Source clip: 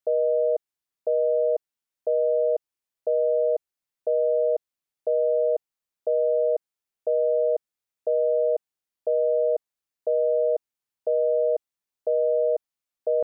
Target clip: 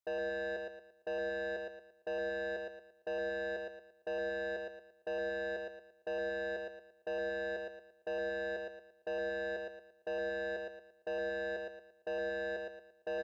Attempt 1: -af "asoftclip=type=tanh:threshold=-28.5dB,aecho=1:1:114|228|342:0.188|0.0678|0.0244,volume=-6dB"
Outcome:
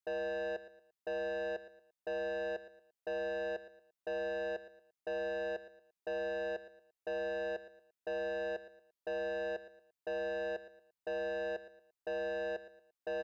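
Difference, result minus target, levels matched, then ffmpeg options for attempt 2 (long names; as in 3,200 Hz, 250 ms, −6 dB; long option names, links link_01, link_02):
echo-to-direct −10.5 dB
-af "asoftclip=type=tanh:threshold=-28.5dB,aecho=1:1:114|228|342|456|570:0.631|0.227|0.0818|0.0294|0.0106,volume=-6dB"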